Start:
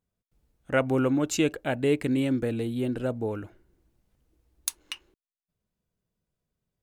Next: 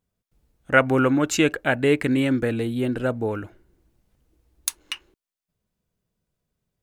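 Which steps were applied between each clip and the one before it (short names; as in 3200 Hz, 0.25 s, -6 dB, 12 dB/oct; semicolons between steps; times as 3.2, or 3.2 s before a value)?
dynamic EQ 1600 Hz, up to +8 dB, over -46 dBFS, Q 1.1; gain +4 dB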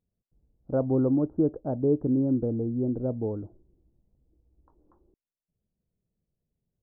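Gaussian blur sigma 13 samples; gain -2 dB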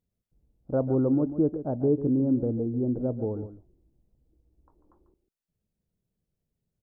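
echo 0.144 s -12 dB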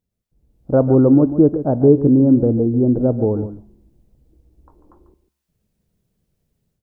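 AGC gain up to 10 dB; resonator 70 Hz, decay 0.79 s, harmonics all, mix 40%; gain +6 dB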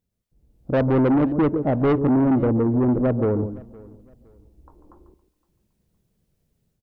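soft clip -15 dBFS, distortion -9 dB; feedback echo 0.514 s, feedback 30%, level -23 dB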